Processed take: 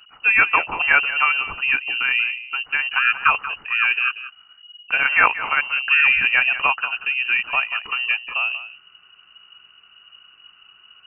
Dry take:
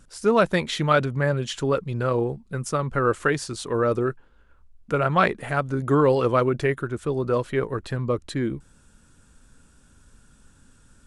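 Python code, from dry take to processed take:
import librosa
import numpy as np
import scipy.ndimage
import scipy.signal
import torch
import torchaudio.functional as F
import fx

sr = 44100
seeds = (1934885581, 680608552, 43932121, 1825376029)

y = x + 10.0 ** (-13.5 / 20.0) * np.pad(x, (int(185 * sr / 1000.0), 0))[:len(x)]
y = fx.freq_invert(y, sr, carrier_hz=2900)
y = fx.band_shelf(y, sr, hz=1000.0, db=8.0, octaves=1.1)
y = y * librosa.db_to_amplitude(2.0)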